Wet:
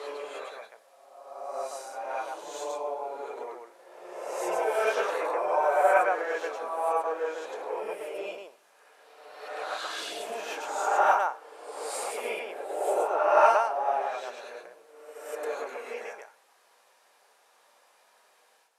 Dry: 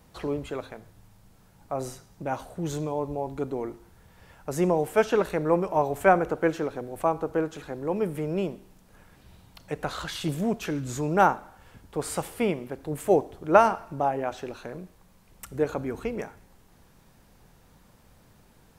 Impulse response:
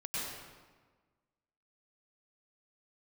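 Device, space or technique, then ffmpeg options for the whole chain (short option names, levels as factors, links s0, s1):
ghost voice: -filter_complex "[0:a]areverse[s0];[1:a]atrim=start_sample=2205[s1];[s0][s1]afir=irnorm=-1:irlink=0,areverse,highpass=f=540:w=0.5412,highpass=f=540:w=1.3066,lowpass=f=12000:w=0.5412,lowpass=f=12000:w=1.3066,volume=0.794"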